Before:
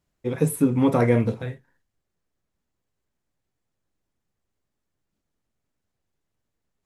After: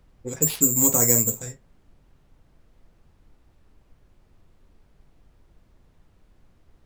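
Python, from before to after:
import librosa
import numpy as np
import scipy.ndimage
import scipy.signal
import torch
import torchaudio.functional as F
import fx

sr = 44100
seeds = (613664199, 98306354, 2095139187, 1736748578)

y = (np.kron(x[::6], np.eye(6)[0]) * 6)[:len(x)]
y = fx.env_lowpass(y, sr, base_hz=480.0, full_db=-12.0)
y = fx.dmg_noise_colour(y, sr, seeds[0], colour='brown', level_db=-48.0)
y = F.gain(torch.from_numpy(y), -6.5).numpy()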